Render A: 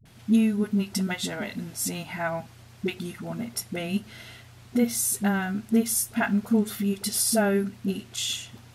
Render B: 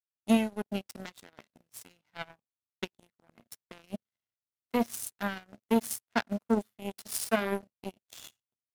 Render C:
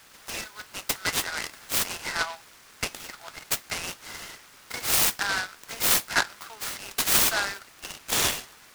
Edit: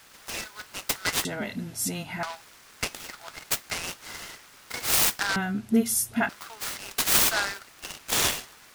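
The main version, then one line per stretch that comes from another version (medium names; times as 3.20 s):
C
1.25–2.23 s: from A
5.36–6.29 s: from A
not used: B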